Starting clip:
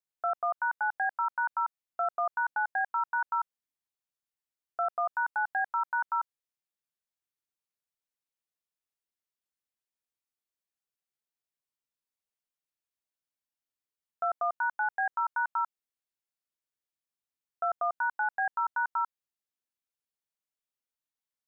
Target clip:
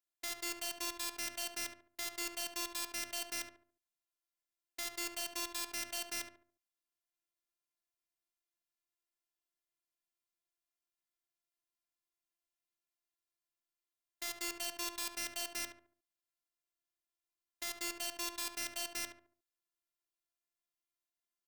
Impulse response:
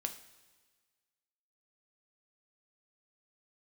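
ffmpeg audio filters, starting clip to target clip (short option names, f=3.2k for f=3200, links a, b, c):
-filter_complex "[0:a]aeval=exprs='(mod(33.5*val(0)+1,2)-1)/33.5':c=same,asplit=2[a][b];[b]adelay=71,lowpass=f=1.4k:p=1,volume=-5dB,asplit=2[c][d];[d]adelay=71,lowpass=f=1.4k:p=1,volume=0.4,asplit=2[e][f];[f]adelay=71,lowpass=f=1.4k:p=1,volume=0.4,asplit=2[g][h];[h]adelay=71,lowpass=f=1.4k:p=1,volume=0.4,asplit=2[i][j];[j]adelay=71,lowpass=f=1.4k:p=1,volume=0.4[k];[a][c][e][g][i][k]amix=inputs=6:normalize=0,afftfilt=real='hypot(re,im)*cos(PI*b)':imag='0':win_size=512:overlap=0.75,volume=1dB"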